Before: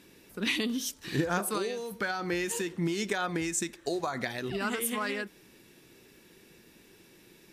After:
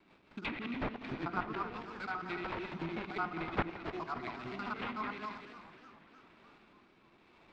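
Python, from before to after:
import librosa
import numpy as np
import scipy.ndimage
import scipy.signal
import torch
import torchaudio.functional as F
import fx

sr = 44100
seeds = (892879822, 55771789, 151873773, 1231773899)

y = fx.local_reverse(x, sr, ms=74.0)
y = fx.highpass(y, sr, hz=650.0, slope=6)
y = fx.peak_eq(y, sr, hz=3000.0, db=-13.0, octaves=0.26)
y = fx.fixed_phaser(y, sr, hz=2600.0, stages=8)
y = y + 10.0 ** (-8.5 / 20.0) * np.pad(y, (int(273 * sr / 1000.0), 0))[:len(y)]
y = fx.rev_spring(y, sr, rt60_s=1.8, pass_ms=(50,), chirp_ms=45, drr_db=11.0)
y = fx.rotary_switch(y, sr, hz=5.5, then_hz=1.0, switch_at_s=4.89)
y = fx.sample_hold(y, sr, seeds[0], rate_hz=6200.0, jitter_pct=20)
y = fx.env_lowpass_down(y, sr, base_hz=2200.0, full_db=-36.5)
y = fx.air_absorb(y, sr, metres=180.0)
y = fx.echo_warbled(y, sr, ms=295, feedback_pct=67, rate_hz=2.8, cents=213, wet_db=-15.5)
y = y * 10.0 ** (4.5 / 20.0)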